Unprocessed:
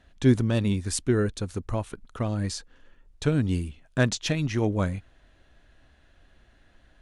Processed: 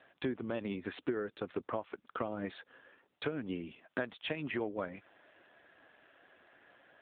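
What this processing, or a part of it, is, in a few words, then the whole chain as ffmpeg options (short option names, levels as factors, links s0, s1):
voicemail: -af "highpass=370,lowpass=3000,acompressor=threshold=0.0126:ratio=10,volume=2" -ar 8000 -c:a libopencore_amrnb -b:a 7400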